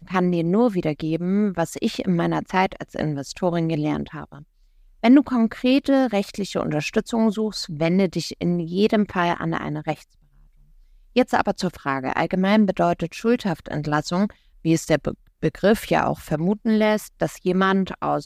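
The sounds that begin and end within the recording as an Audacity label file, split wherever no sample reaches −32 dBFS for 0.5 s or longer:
5.040000	9.950000	sound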